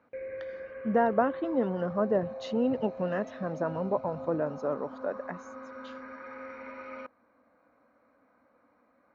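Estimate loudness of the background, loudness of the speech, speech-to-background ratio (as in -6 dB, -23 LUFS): -42.0 LUFS, -30.5 LUFS, 11.5 dB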